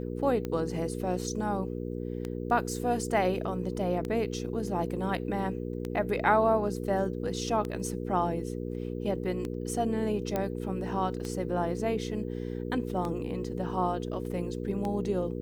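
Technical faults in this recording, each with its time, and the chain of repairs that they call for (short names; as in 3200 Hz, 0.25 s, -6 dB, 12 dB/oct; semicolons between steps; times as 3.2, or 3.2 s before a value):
hum 60 Hz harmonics 8 -35 dBFS
tick 33 1/3 rpm -21 dBFS
10.36 pop -16 dBFS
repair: de-click; de-hum 60 Hz, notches 8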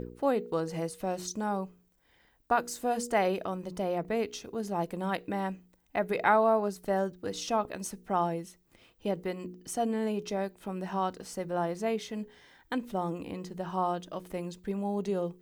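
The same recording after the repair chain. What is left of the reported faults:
none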